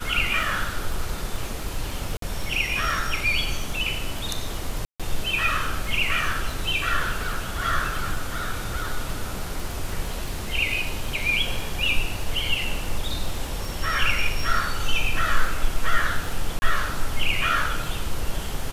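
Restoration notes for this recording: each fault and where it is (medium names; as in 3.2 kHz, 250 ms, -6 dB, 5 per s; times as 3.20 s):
crackle 25 per s -28 dBFS
2.17–2.22 s: dropout 53 ms
4.85–5.00 s: dropout 146 ms
16.59–16.62 s: dropout 30 ms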